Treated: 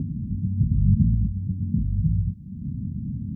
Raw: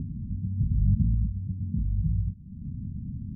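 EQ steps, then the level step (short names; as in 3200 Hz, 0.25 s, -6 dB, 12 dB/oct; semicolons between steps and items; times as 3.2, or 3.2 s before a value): HPF 53 Hz; bell 69 Hz -4.5 dB 1.7 oct; +8.0 dB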